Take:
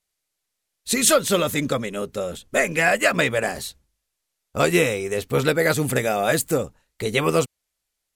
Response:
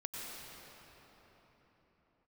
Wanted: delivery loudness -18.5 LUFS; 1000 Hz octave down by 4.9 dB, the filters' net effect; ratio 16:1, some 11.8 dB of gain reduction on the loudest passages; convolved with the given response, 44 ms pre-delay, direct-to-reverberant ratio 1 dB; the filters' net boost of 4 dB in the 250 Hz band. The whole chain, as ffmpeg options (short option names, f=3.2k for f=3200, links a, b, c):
-filter_complex "[0:a]equalizer=f=250:t=o:g=6,equalizer=f=1k:t=o:g=-8.5,acompressor=threshold=-25dB:ratio=16,asplit=2[a][b];[1:a]atrim=start_sample=2205,adelay=44[c];[b][c]afir=irnorm=-1:irlink=0,volume=-1.5dB[d];[a][d]amix=inputs=2:normalize=0,volume=9.5dB"